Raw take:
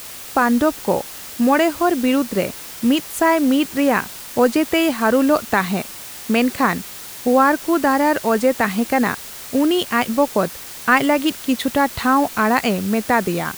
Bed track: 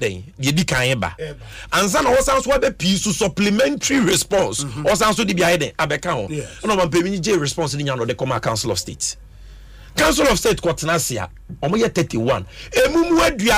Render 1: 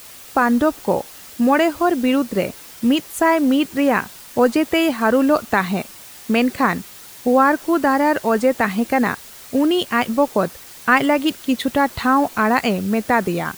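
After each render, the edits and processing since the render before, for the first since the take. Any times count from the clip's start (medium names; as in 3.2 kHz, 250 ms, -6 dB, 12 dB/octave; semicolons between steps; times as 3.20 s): noise reduction 6 dB, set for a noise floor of -35 dBFS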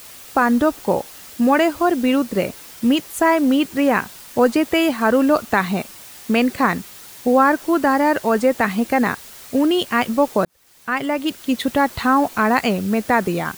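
10.45–11.62 s: fade in linear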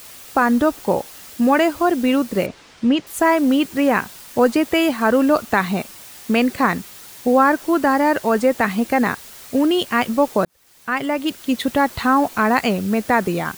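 2.46–3.07 s: distance through air 120 m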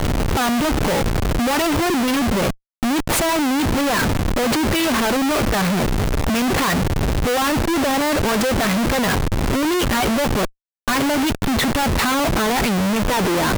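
phaser 0.86 Hz, delay 3.5 ms, feedback 34%; Schmitt trigger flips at -31 dBFS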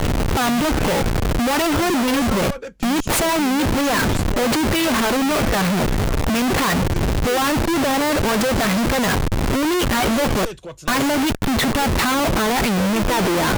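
add bed track -15.5 dB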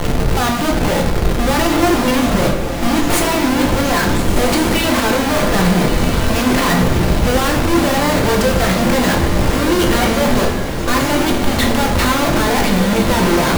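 echo that smears into a reverb 1386 ms, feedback 41%, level -6 dB; simulated room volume 170 m³, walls mixed, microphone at 0.84 m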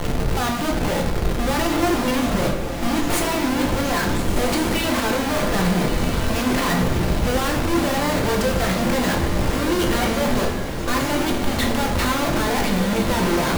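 trim -6 dB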